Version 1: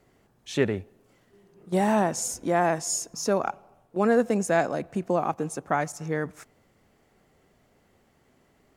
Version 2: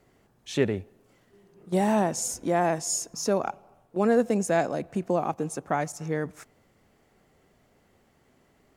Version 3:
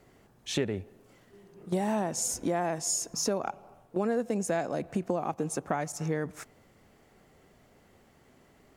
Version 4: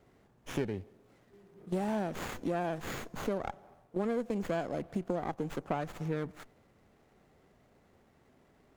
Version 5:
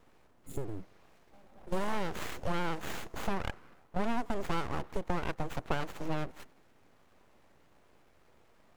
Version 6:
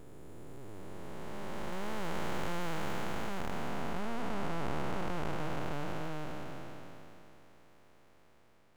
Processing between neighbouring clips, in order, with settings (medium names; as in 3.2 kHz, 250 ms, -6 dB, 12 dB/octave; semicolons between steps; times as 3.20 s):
dynamic bell 1.4 kHz, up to -4 dB, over -40 dBFS, Q 1.1
compression 4:1, threshold -30 dBFS, peak gain reduction 11.5 dB; trim +3 dB
sliding maximum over 9 samples; trim -4 dB
spectral replace 0.47–1.08 s, 280–6800 Hz after; full-wave rectifier; trim +3 dB
spectral blur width 1300 ms; trim +3.5 dB